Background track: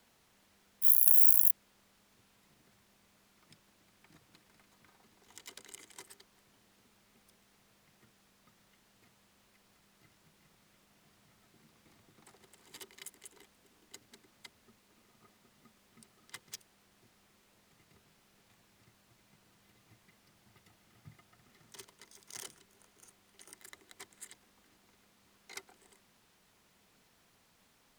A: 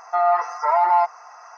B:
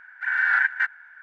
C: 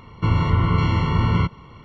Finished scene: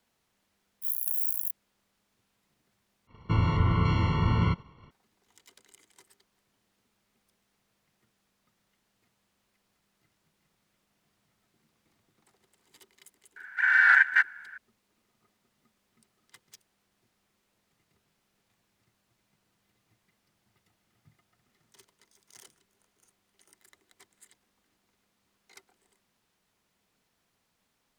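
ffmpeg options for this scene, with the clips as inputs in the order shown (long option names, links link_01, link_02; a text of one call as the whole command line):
ffmpeg -i bed.wav -i cue0.wav -i cue1.wav -i cue2.wav -filter_complex "[0:a]volume=-7.5dB[link_01];[3:a]agate=range=-33dB:threshold=-39dB:ratio=3:release=100:detection=peak[link_02];[2:a]highshelf=frequency=2400:gain=9.5[link_03];[link_01]asplit=2[link_04][link_05];[link_04]atrim=end=3.074[link_06];[link_02]atrim=end=1.84,asetpts=PTS-STARTPTS,volume=-6dB[link_07];[link_05]atrim=start=4.906[link_08];[link_03]atrim=end=1.22,asetpts=PTS-STARTPTS,volume=-1.5dB,afade=type=in:duration=0.004:curve=hsin,afade=type=out:start_time=1.216:duration=0.004:curve=hsin,adelay=13360[link_09];[link_06][link_07]acrossfade=duration=0.004:curve1=hsin:curve2=hsin[link_10];[link_10][link_08]acrossfade=duration=0.004:curve1=hsin:curve2=hsin[link_11];[link_11][link_09]amix=inputs=2:normalize=0" out.wav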